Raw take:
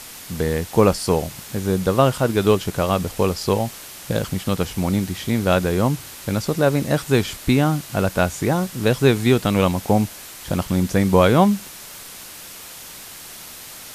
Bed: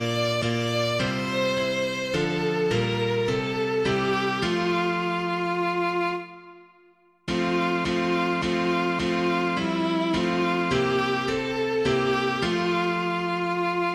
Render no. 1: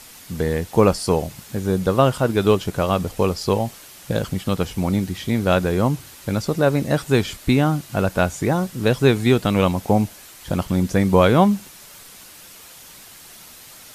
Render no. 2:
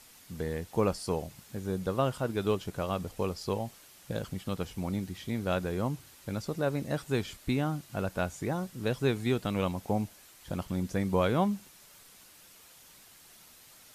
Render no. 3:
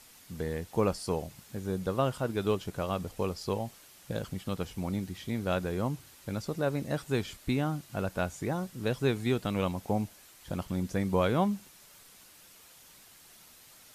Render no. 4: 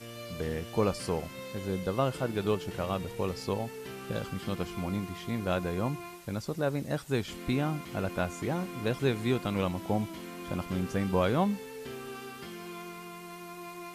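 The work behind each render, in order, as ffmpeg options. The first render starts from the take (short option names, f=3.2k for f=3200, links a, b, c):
-af "afftdn=nr=6:nf=-38"
-af "volume=-12.5dB"
-af anull
-filter_complex "[1:a]volume=-18.5dB[a];[0:a][a]amix=inputs=2:normalize=0"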